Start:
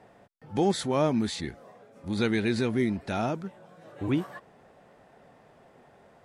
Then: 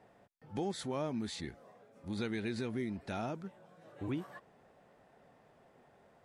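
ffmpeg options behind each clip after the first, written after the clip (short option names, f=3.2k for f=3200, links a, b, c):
-af "acompressor=threshold=-27dB:ratio=2.5,volume=-7.5dB"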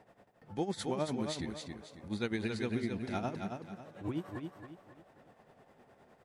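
-filter_complex "[0:a]tremolo=f=9.8:d=0.78,asplit=2[a][b];[b]aecho=0:1:273|546|819|1092:0.531|0.186|0.065|0.0228[c];[a][c]amix=inputs=2:normalize=0,volume=4.5dB"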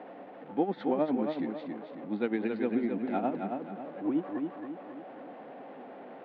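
-af "aeval=exprs='val(0)+0.5*0.00447*sgn(val(0))':c=same,adynamicsmooth=sensitivity=1.5:basefreq=2.6k,highpass=f=190:w=0.5412,highpass=f=190:w=1.3066,equalizer=f=280:t=q:w=4:g=10,equalizer=f=520:t=q:w=4:g=6,equalizer=f=760:t=q:w=4:g=6,lowpass=f=3.5k:w=0.5412,lowpass=f=3.5k:w=1.3066,volume=1.5dB"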